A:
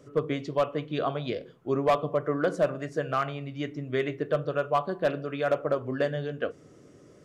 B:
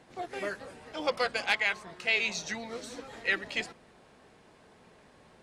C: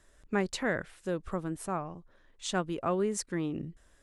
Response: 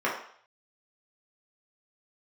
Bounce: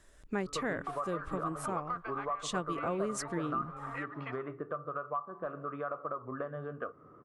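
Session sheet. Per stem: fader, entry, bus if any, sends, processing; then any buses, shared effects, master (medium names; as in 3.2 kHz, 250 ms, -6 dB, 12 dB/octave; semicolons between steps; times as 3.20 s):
-5.5 dB, 0.40 s, bus A, no send, none
-4.5 dB, 0.70 s, bus A, no send, high-pass 690 Hz; gate -54 dBFS, range -24 dB; three bands compressed up and down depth 70%
+1.5 dB, 0.00 s, no bus, no send, none
bus A: 0.0 dB, resonant low-pass 1.2 kHz, resonance Q 11; compression 3:1, threshold -31 dBFS, peak gain reduction 14.5 dB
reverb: none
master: compression 1.5:1, threshold -41 dBFS, peak gain reduction 7 dB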